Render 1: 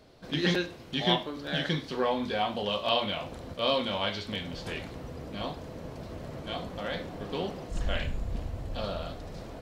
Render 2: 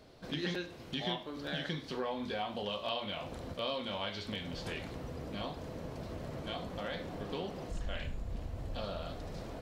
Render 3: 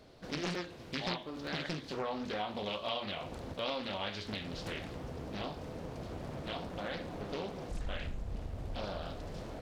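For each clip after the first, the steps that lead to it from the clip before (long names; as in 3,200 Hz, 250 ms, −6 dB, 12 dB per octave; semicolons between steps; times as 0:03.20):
downward compressor 2.5 to 1, threshold −36 dBFS, peak gain reduction 11 dB; level −1 dB
highs frequency-modulated by the lows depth 0.86 ms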